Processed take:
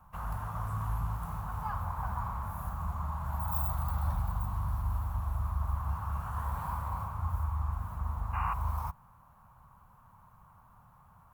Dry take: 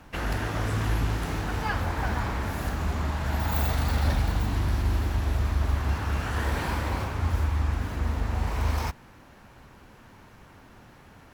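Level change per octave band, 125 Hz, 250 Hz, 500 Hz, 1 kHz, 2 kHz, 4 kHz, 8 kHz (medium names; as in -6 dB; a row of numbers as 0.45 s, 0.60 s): -7.0 dB, -13.5 dB, -16.0 dB, -3.0 dB, -15.5 dB, under -20 dB, -14.0 dB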